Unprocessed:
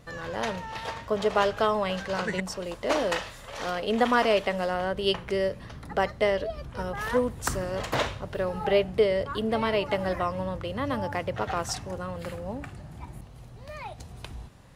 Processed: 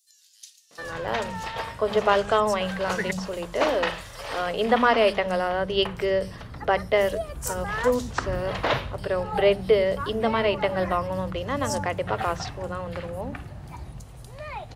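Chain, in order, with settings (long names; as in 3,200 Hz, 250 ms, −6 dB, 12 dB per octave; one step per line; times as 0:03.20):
three-band delay without the direct sound highs, mids, lows 710/790 ms, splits 230/5,200 Hz
level +3.5 dB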